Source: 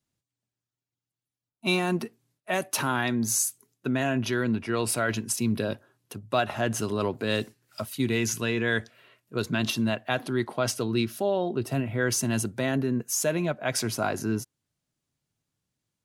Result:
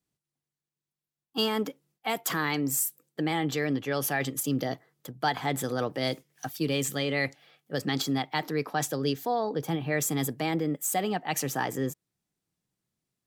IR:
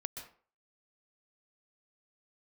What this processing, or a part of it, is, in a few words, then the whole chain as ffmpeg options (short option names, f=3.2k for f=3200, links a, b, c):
nightcore: -af "asetrate=53361,aresample=44100,volume=-2dB"